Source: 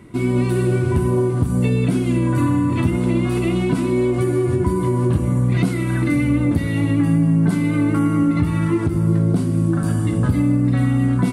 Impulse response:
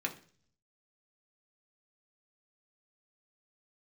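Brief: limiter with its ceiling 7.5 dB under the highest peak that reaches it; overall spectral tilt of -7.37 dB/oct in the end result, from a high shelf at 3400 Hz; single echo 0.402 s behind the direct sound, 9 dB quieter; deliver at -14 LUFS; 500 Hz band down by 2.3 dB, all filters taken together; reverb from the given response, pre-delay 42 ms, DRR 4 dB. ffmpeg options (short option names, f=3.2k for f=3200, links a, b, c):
-filter_complex "[0:a]equalizer=f=500:t=o:g=-4,highshelf=f=3.4k:g=3,alimiter=limit=-14dB:level=0:latency=1,aecho=1:1:402:0.355,asplit=2[a][b];[1:a]atrim=start_sample=2205,adelay=42[c];[b][c]afir=irnorm=-1:irlink=0,volume=-7.5dB[d];[a][d]amix=inputs=2:normalize=0,volume=6.5dB"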